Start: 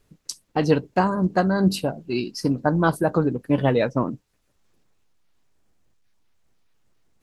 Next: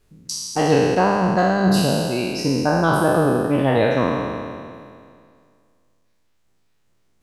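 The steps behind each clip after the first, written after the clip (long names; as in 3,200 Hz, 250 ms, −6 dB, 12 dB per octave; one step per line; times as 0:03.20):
peak hold with a decay on every bin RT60 2.20 s
level −1 dB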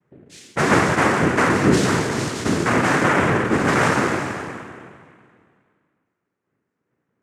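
low-pass that shuts in the quiet parts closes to 890 Hz, open at −16 dBFS
cochlear-implant simulation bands 3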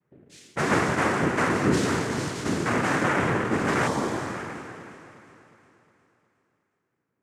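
delay that swaps between a low-pass and a high-pass 180 ms, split 1,400 Hz, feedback 70%, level −11 dB
healed spectral selection 0:03.89–0:04.30, 1,200–3,000 Hz after
level −6.5 dB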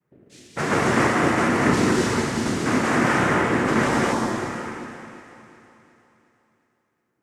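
reverb whose tail is shaped and stops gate 290 ms rising, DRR −1.5 dB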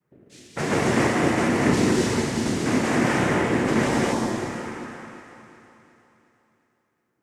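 dynamic equaliser 1,300 Hz, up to −7 dB, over −38 dBFS, Q 1.6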